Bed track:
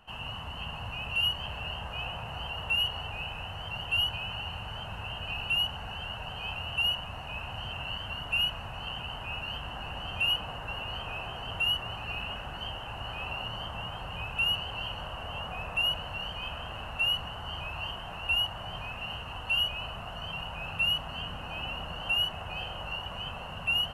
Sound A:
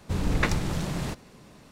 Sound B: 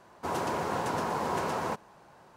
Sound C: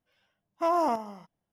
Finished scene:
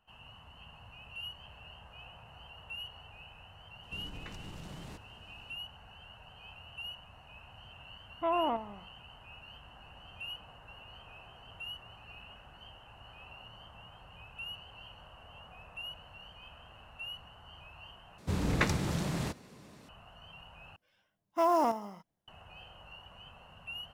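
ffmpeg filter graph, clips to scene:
-filter_complex "[1:a]asplit=2[s0][s1];[3:a]asplit=2[s2][s3];[0:a]volume=0.178[s4];[s0]acompressor=threshold=0.0355:ratio=6:attack=3.2:release=140:knee=1:detection=peak[s5];[s2]aresample=8000,aresample=44100[s6];[s1]highpass=63[s7];[s3]acrusher=bits=7:mode=log:mix=0:aa=0.000001[s8];[s4]asplit=3[s9][s10][s11];[s9]atrim=end=18.184[s12];[s7]atrim=end=1.71,asetpts=PTS-STARTPTS,volume=0.708[s13];[s10]atrim=start=19.886:end=20.764[s14];[s8]atrim=end=1.52,asetpts=PTS-STARTPTS,volume=0.841[s15];[s11]atrim=start=22.276[s16];[s5]atrim=end=1.71,asetpts=PTS-STARTPTS,volume=0.224,afade=t=in:d=0.004:c=hsin,afade=t=out:st=1.706:d=0.004:c=hsin,adelay=3830[s17];[s6]atrim=end=1.52,asetpts=PTS-STARTPTS,volume=0.562,afade=t=in:d=0.004:c=hsin,afade=t=out:st=1.516:d=0.004:c=hsin,adelay=7610[s18];[s12][s13]acrossfade=d=0.004:c1=hsin:c2=hsin[s19];[s19][s14]acrossfade=d=0.004:c1=hsin:c2=hsin[s20];[s20][s15]acrossfade=d=0.004:c1=hsin:c2=hsin[s21];[s21][s16]acrossfade=d=0.004:c1=hsin:c2=hsin[s22];[s22][s17][s18]amix=inputs=3:normalize=0"

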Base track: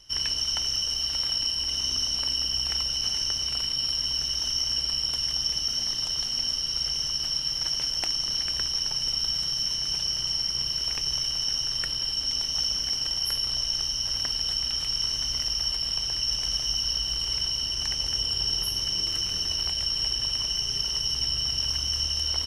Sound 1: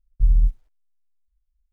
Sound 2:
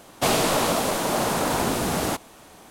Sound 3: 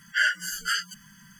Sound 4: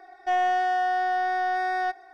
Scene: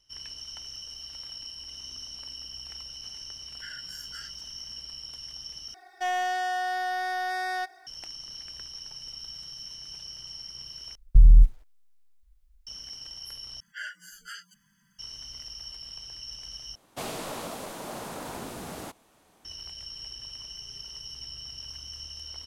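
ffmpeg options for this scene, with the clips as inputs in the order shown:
-filter_complex "[3:a]asplit=2[s0][s1];[0:a]volume=0.2[s2];[s0]acompressor=threshold=0.0562:ratio=6:attack=3.2:release=140:knee=1:detection=peak[s3];[4:a]crystalizer=i=6:c=0[s4];[1:a]alimiter=level_in=6.68:limit=0.891:release=50:level=0:latency=1[s5];[s2]asplit=5[s6][s7][s8][s9][s10];[s6]atrim=end=5.744[s11];[s4]atrim=end=2.13,asetpts=PTS-STARTPTS,volume=0.447[s12];[s7]atrim=start=7.866:end=10.954[s13];[s5]atrim=end=1.72,asetpts=PTS-STARTPTS,volume=0.473[s14];[s8]atrim=start=12.666:end=13.604[s15];[s1]atrim=end=1.39,asetpts=PTS-STARTPTS,volume=0.168[s16];[s9]atrim=start=14.986:end=16.754[s17];[2:a]atrim=end=2.7,asetpts=PTS-STARTPTS,volume=0.188[s18];[s10]atrim=start=19.446[s19];[s3]atrim=end=1.39,asetpts=PTS-STARTPTS,volume=0.168,afade=t=in:d=0.004:c=hsin,afade=t=out:st=1.386:d=0.004:c=hsin,adelay=3470[s20];[s11][s12]acrossfade=d=0.004:c1=hsin:c2=hsin[s21];[s21][s13]acrossfade=d=0.004:c1=hsin:c2=hsin[s22];[s22][s14]acrossfade=d=0.004:c1=hsin:c2=hsin[s23];[s23][s15]acrossfade=d=0.004:c1=hsin:c2=hsin[s24];[s24][s16]acrossfade=d=0.004:c1=hsin:c2=hsin[s25];[s25][s17]acrossfade=d=0.004:c1=hsin:c2=hsin[s26];[s26][s18]acrossfade=d=0.004:c1=hsin:c2=hsin[s27];[s27][s19]acrossfade=d=0.004:c1=hsin:c2=hsin[s28];[s28][s20]amix=inputs=2:normalize=0"

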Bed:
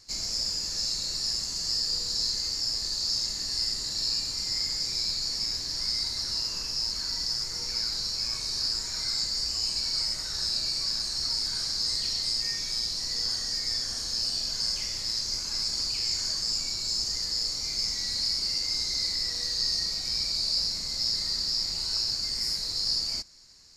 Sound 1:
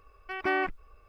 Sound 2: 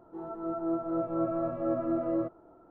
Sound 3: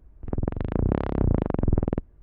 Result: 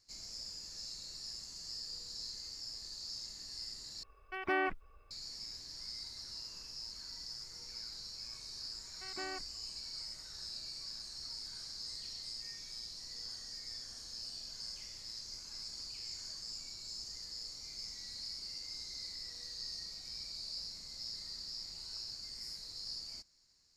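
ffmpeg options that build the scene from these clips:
-filter_complex "[1:a]asplit=2[s0][s1];[0:a]volume=0.158,asplit=2[s2][s3];[s2]atrim=end=4.034[s4];[s0]atrim=end=1.08,asetpts=PTS-STARTPTS,volume=0.562[s5];[s3]atrim=start=5.106[s6];[s1]atrim=end=1.08,asetpts=PTS-STARTPTS,volume=0.158,afade=t=in:d=0.004:c=hsin,afade=t=out:st=1.076:d=0.004:c=hsin,adelay=8720[s7];[s4][s5]acrossfade=d=0.004:c1=hsin:c2=hsin[s8];[s8][s6]acrossfade=d=0.004:c1=hsin:c2=hsin[s9];[s9][s7]amix=inputs=2:normalize=0"

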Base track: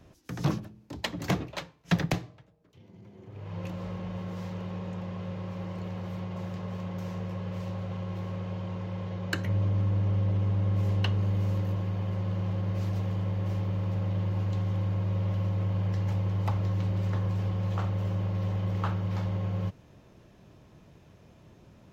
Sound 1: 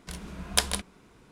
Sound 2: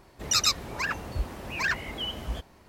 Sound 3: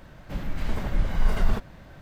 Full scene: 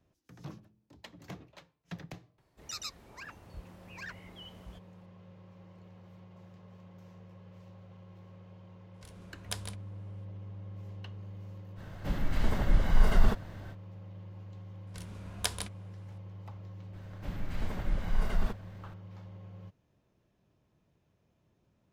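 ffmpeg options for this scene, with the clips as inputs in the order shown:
-filter_complex "[1:a]asplit=2[s0][s1];[3:a]asplit=2[s2][s3];[0:a]volume=0.133[s4];[s2]bandreject=f=2400:w=13[s5];[2:a]atrim=end=2.68,asetpts=PTS-STARTPTS,volume=0.141,afade=t=in:d=0.004:c=hsin,afade=t=out:st=2.676:d=0.004:c=hsin,adelay=2380[s6];[s0]atrim=end=1.31,asetpts=PTS-STARTPTS,volume=0.188,afade=t=in:d=0.004:c=hsin,afade=t=out:st=1.306:d=0.004:c=hsin,adelay=8940[s7];[s5]atrim=end=2.01,asetpts=PTS-STARTPTS,volume=0.944,afade=t=in:d=0.05,afade=t=out:st=1.96:d=0.05,adelay=11750[s8];[s1]atrim=end=1.31,asetpts=PTS-STARTPTS,volume=0.376,afade=t=in:d=0.004:c=hsin,afade=t=out:st=1.306:d=0.004:c=hsin,adelay=14870[s9];[s3]atrim=end=2.01,asetpts=PTS-STARTPTS,volume=0.447,afade=t=in:d=0.004:c=hsin,afade=t=out:st=2.006:d=0.004:c=hsin,adelay=16930[s10];[s4][s6][s7][s8][s9][s10]amix=inputs=6:normalize=0"

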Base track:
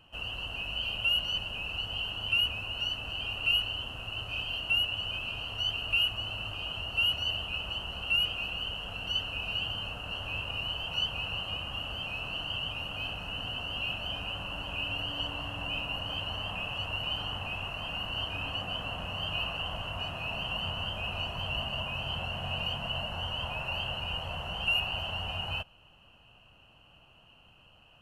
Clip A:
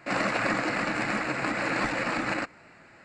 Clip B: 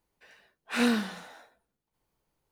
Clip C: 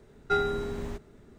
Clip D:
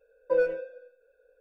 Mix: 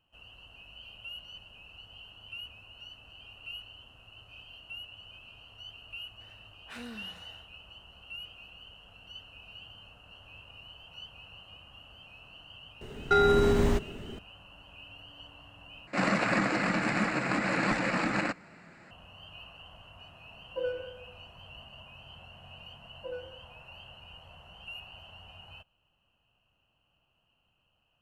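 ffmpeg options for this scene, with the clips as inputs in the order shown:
-filter_complex "[4:a]asplit=2[s0][s1];[0:a]volume=0.168[s2];[2:a]acompressor=threshold=0.0355:ratio=6:attack=0.24:release=311:knee=6:detection=rms[s3];[3:a]alimiter=level_in=15.8:limit=0.891:release=50:level=0:latency=1[s4];[1:a]equalizer=f=180:t=o:w=0.53:g=9[s5];[s0]aecho=1:1:68|136|204|272|340|408|476:0.316|0.183|0.106|0.0617|0.0358|0.0208|0.012[s6];[s2]asplit=2[s7][s8];[s7]atrim=end=15.874[s9];[s5]atrim=end=3.04,asetpts=PTS-STARTPTS,volume=0.841[s10];[s8]atrim=start=18.906[s11];[s3]atrim=end=2.51,asetpts=PTS-STARTPTS,volume=0.398,afade=t=in:d=0.004:c=hsin,afade=t=out:st=2.506:d=0.004:c=hsin,adelay=5990[s12];[s4]atrim=end=1.38,asetpts=PTS-STARTPTS,volume=0.224,afade=t=in:d=0.004:c=hsin,afade=t=out:st=1.376:d=0.004:c=hsin,adelay=12810[s13];[s6]atrim=end=1.4,asetpts=PTS-STARTPTS,volume=0.316,afade=t=in:d=0.004:c=hsin,afade=t=out:st=1.396:d=0.004:c=hsin,adelay=20260[s14];[s1]atrim=end=1.4,asetpts=PTS-STARTPTS,volume=0.158,afade=t=in:d=0.004:c=hsin,afade=t=out:st=1.396:d=0.004:c=hsin,adelay=22740[s15];[s9][s10]acrossfade=d=0.004:c1=hsin:c2=hsin[s16];[s16][s11]acrossfade=d=0.004:c1=hsin:c2=hsin[s17];[s17][s12][s13][s14][s15]amix=inputs=5:normalize=0"

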